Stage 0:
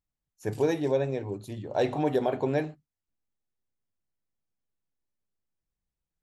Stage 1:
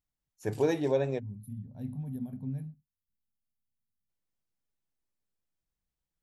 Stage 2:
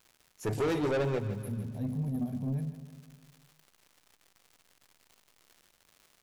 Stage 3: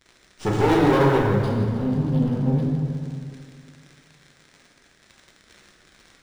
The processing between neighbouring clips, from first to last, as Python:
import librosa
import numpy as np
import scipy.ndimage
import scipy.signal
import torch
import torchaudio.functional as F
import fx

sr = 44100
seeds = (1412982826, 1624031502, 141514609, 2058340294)

y1 = fx.spec_box(x, sr, start_s=1.19, length_s=2.9, low_hz=260.0, high_hz=9700.0, gain_db=-29)
y1 = y1 * librosa.db_to_amplitude(-1.5)
y2 = fx.dmg_crackle(y1, sr, seeds[0], per_s=220.0, level_db=-53.0)
y2 = 10.0 ** (-33.0 / 20.0) * np.tanh(y2 / 10.0 ** (-33.0 / 20.0))
y2 = fx.echo_feedback(y2, sr, ms=152, feedback_pct=58, wet_db=-12.0)
y2 = y2 * librosa.db_to_amplitude(6.5)
y3 = fx.lower_of_two(y2, sr, delay_ms=0.53)
y3 = fx.rev_plate(y3, sr, seeds[1], rt60_s=2.2, hf_ratio=0.55, predelay_ms=0, drr_db=-2.5)
y3 = np.interp(np.arange(len(y3)), np.arange(len(y3))[::3], y3[::3])
y3 = y3 * librosa.db_to_amplitude(8.5)